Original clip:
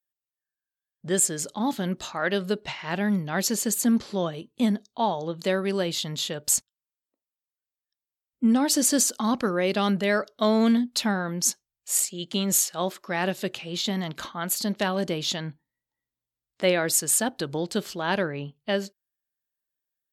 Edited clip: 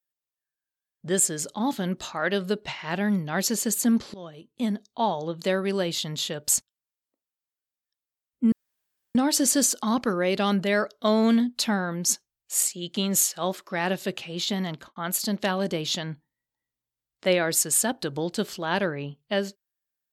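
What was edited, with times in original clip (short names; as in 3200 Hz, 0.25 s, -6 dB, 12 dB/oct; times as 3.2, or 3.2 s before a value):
4.14–5.01 fade in, from -18 dB
8.52 insert room tone 0.63 s
14.07–14.33 studio fade out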